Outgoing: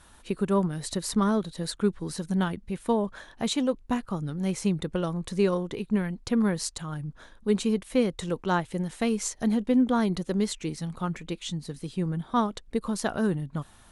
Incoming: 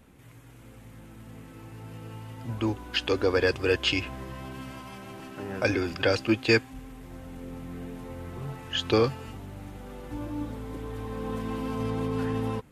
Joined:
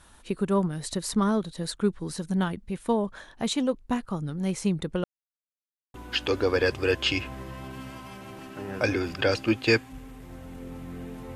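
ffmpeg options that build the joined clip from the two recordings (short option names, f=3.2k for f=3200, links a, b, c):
-filter_complex "[0:a]apad=whole_dur=11.35,atrim=end=11.35,asplit=2[a][b];[a]atrim=end=5.04,asetpts=PTS-STARTPTS,afade=t=out:st=5.036:d=0.004:c=hsin[c];[b]atrim=start=5.04:end=5.94,asetpts=PTS-STARTPTS,volume=0[d];[1:a]atrim=start=2.75:end=8.16,asetpts=PTS-STARTPTS,afade=t=in:d=0.004:c=hsin[e];[c][d][e]concat=n=3:v=0:a=1"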